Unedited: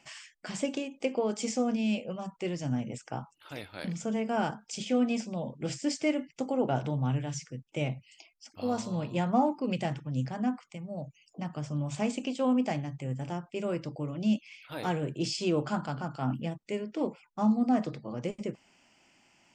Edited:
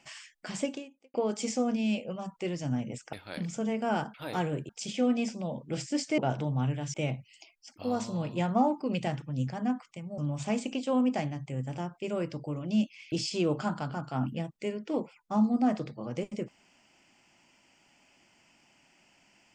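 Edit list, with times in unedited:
0:00.64–0:01.14: fade out quadratic
0:03.13–0:03.60: remove
0:06.10–0:06.64: remove
0:07.40–0:07.72: remove
0:10.96–0:11.70: remove
0:14.64–0:15.19: move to 0:04.61

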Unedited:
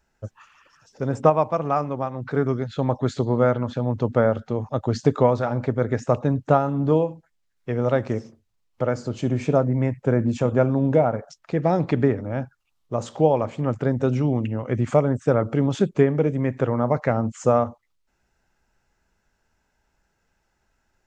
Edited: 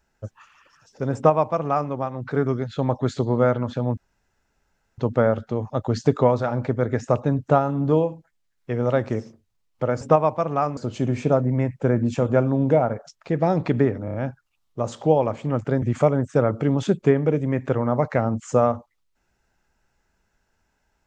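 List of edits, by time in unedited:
0:01.15–0:01.91: duplicate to 0:09.00
0:03.97: splice in room tone 1.01 s
0:12.28: stutter 0.03 s, 4 plays
0:13.96–0:14.74: remove

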